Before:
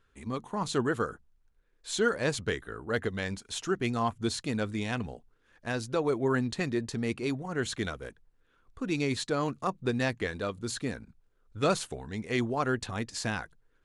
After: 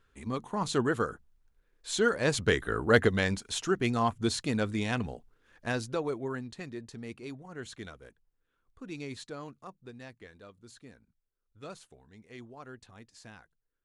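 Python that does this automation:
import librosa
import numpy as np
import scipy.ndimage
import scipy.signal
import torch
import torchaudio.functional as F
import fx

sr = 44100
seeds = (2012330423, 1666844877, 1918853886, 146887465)

y = fx.gain(x, sr, db=fx.line((2.2, 0.5), (2.78, 10.0), (3.64, 1.5), (5.69, 1.5), (6.44, -10.5), (9.21, -10.5), (9.89, -18.0)))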